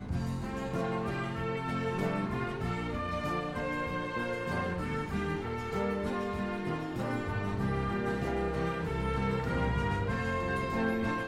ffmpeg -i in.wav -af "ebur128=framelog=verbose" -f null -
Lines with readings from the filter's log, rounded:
Integrated loudness:
  I:         -33.3 LUFS
  Threshold: -43.3 LUFS
Loudness range:
  LRA:         2.0 LU
  Threshold: -53.5 LUFS
  LRA low:   -34.1 LUFS
  LRA high:  -32.1 LUFS